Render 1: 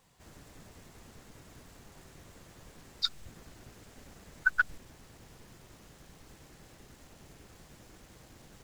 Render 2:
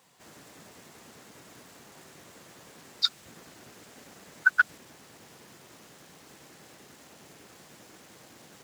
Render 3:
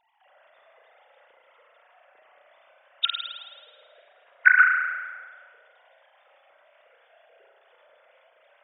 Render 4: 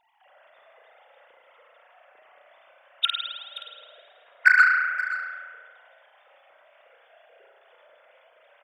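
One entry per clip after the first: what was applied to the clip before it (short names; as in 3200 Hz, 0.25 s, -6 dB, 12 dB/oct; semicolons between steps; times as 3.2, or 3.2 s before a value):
HPF 170 Hz 12 dB/oct; low shelf 470 Hz -3 dB; gain +5.5 dB
sine-wave speech; spring tank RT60 1.4 s, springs 33 ms, chirp 25 ms, DRR -0.5 dB; gain +3.5 dB
in parallel at -4.5 dB: soft clip -18.5 dBFS, distortion -7 dB; on the sum: echo 0.525 s -15 dB; gain -2 dB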